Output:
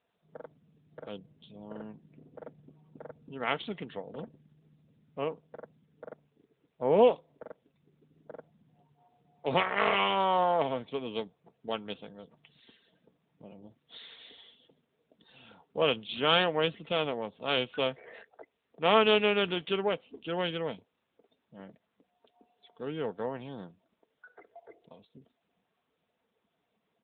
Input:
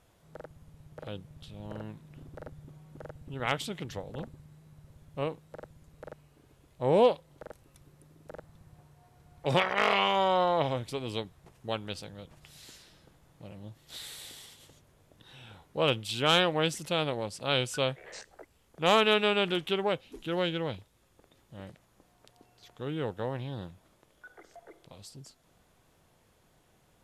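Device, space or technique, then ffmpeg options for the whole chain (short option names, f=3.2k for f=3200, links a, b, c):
mobile call with aggressive noise cancelling: -filter_complex "[0:a]asettb=1/sr,asplit=3[a][b][c];[a]atrim=end=2.014[d];[b]atrim=start=2.01:end=3.01,asetpts=PTS-STARTPTS,afade=t=in:d=0.004:c=qsin,afade=t=out:st=0.996:d=0.004:c=qsin,highpass=100[e];[c]atrim=start=3.006[f];[d][e]acrossfade=d=0.004:c1=hsin:c2=qsin[g];[g][f]acrossfade=d=0.004:c1=qsin:c2=hsin,highpass=180,aecho=1:1:4.4:0.34,afftdn=nr=15:nf=-55" -ar 8000 -c:a libopencore_amrnb -b:a 10200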